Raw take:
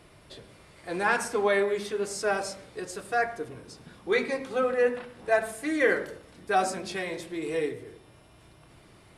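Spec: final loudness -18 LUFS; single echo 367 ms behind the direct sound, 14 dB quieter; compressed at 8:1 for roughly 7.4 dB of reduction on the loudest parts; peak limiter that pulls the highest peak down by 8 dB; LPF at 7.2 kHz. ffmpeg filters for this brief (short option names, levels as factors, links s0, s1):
-af "lowpass=7200,acompressor=threshold=0.0501:ratio=8,alimiter=level_in=1.26:limit=0.0631:level=0:latency=1,volume=0.794,aecho=1:1:367:0.2,volume=7.94"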